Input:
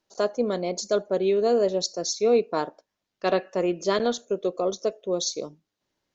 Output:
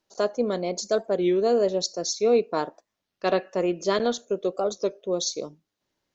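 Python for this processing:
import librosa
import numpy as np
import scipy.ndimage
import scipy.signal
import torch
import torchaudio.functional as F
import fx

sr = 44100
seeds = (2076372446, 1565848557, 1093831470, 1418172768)

y = fx.record_warp(x, sr, rpm=33.33, depth_cents=160.0)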